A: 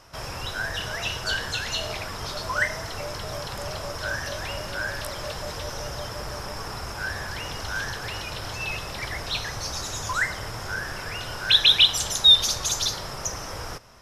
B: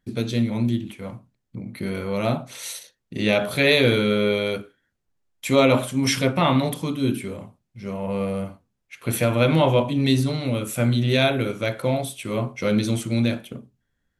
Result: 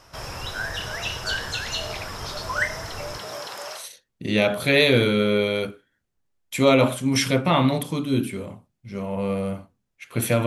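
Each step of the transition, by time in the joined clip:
A
3.17–3.88 HPF 170 Hz -> 830 Hz
3.8 switch to B from 2.71 s, crossfade 0.16 s

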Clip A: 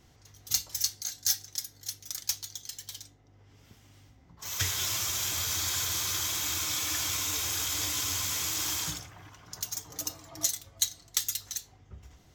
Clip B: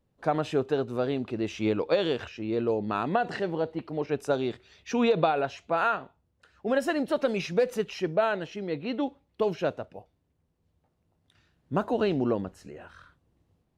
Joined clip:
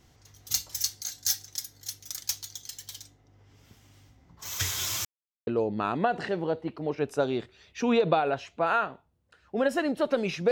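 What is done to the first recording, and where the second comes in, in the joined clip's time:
clip A
5.05–5.47 mute
5.47 switch to clip B from 2.58 s

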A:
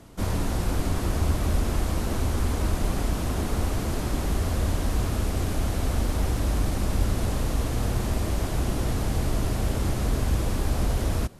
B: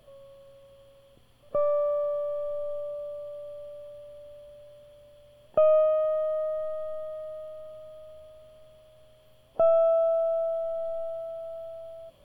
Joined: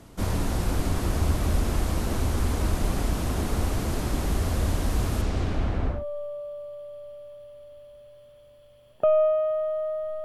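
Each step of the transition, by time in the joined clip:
A
5.21–6.05 LPF 6800 Hz -> 1400 Hz
5.96 switch to B from 2.5 s, crossfade 0.18 s

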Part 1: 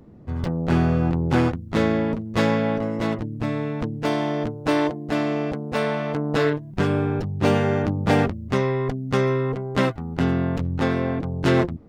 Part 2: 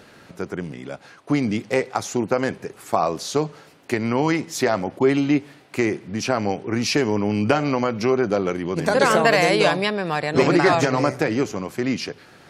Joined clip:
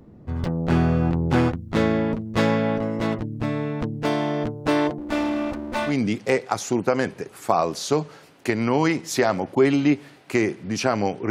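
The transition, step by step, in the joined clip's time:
part 1
4.98–5.96 minimum comb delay 3.4 ms
5.9 switch to part 2 from 1.34 s, crossfade 0.12 s

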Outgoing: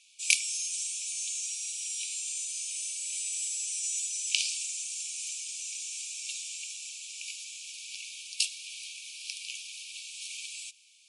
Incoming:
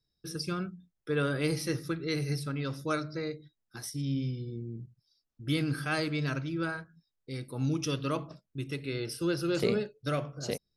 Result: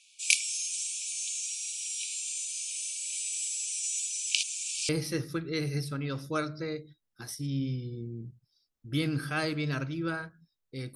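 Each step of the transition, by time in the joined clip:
outgoing
4.43–4.89 reverse
4.89 switch to incoming from 1.44 s

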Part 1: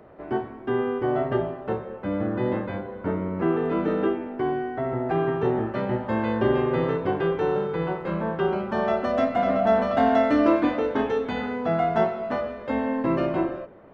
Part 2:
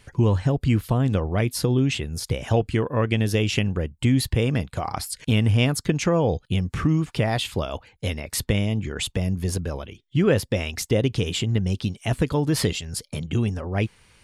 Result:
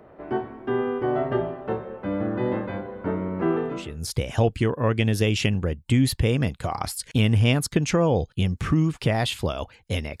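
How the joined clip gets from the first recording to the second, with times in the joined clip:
part 1
3.82 switch to part 2 from 1.95 s, crossfade 0.48 s quadratic

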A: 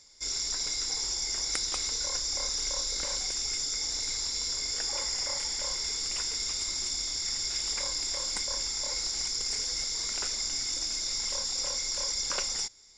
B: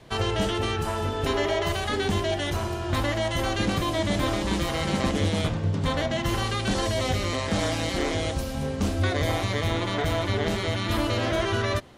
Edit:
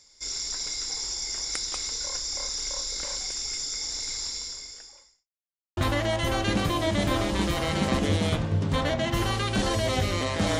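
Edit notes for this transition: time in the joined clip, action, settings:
A
4.28–5.28 fade out quadratic
5.28–5.77 mute
5.77 switch to B from 2.89 s

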